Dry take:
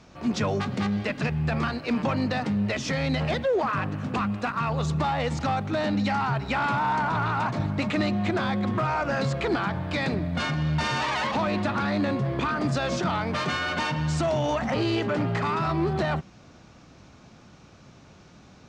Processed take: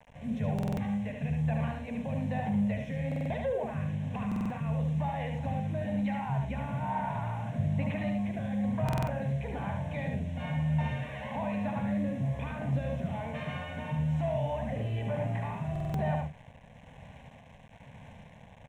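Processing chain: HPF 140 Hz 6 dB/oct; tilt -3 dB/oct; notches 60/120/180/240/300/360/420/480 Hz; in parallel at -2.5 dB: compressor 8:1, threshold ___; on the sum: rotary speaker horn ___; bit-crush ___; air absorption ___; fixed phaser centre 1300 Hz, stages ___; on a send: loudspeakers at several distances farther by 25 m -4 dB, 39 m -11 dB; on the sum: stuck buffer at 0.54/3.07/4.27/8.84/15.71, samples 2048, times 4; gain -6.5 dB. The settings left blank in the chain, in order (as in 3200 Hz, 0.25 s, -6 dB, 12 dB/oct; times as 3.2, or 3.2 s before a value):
-35 dBFS, 1.1 Hz, 7-bit, 100 m, 6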